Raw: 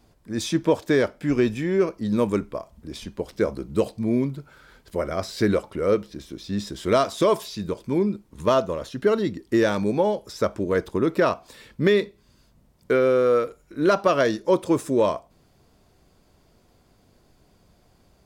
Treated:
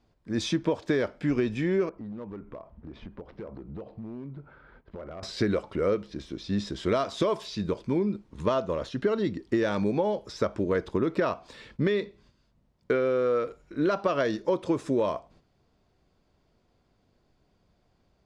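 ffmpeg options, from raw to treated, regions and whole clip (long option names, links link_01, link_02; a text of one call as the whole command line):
ffmpeg -i in.wav -filter_complex "[0:a]asettb=1/sr,asplit=3[link_01][link_02][link_03];[link_01]atrim=end=1.894[link_04];[link_02]atrim=start=1.89:end=5.23,asetpts=PTS-STARTPTS,afade=type=in:duration=0.004:curve=qsin,afade=type=out:start_time=3.336:duration=0.004:curve=qsin,lowpass=1600,acompressor=threshold=-37dB:ratio=5:attack=3.2:release=140:knee=1:detection=peak,volume=33.5dB,asoftclip=hard,volume=-33.5dB[link_05];[link_03]atrim=start=5.226[link_06];[link_04][link_05]acrossfade=duration=0.004:curve1=hsin:curve2=qsin[link_07];[link_07][link_06]acrossfade=duration=0.004:curve1=qsin:curve2=hsin,agate=range=-9dB:threshold=-53dB:ratio=16:detection=peak,lowpass=5100,acompressor=threshold=-22dB:ratio=6" out.wav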